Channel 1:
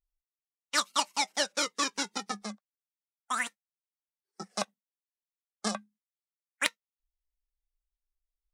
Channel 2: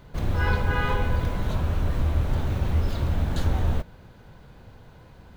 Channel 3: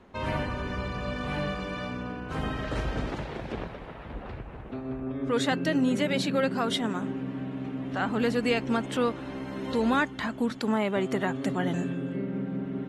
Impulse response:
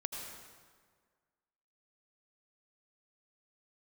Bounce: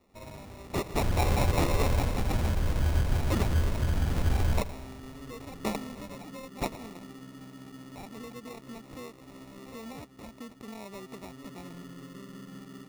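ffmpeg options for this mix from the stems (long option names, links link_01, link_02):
-filter_complex "[0:a]asoftclip=type=tanh:threshold=-19dB,lowpass=frequency=2700:poles=1,volume=-0.5dB,asplit=2[link_01][link_02];[link_02]volume=-8.5dB[link_03];[1:a]adelay=800,volume=-5dB,asplit=2[link_04][link_05];[link_05]volume=-10.5dB[link_06];[2:a]acompressor=threshold=-30dB:ratio=3,volume=-11.5dB[link_07];[3:a]atrim=start_sample=2205[link_08];[link_03][link_06]amix=inputs=2:normalize=0[link_09];[link_09][link_08]afir=irnorm=-1:irlink=0[link_10];[link_01][link_04][link_07][link_10]amix=inputs=4:normalize=0,equalizer=frequency=5500:width=5.6:gain=8,acrusher=samples=28:mix=1:aa=0.000001"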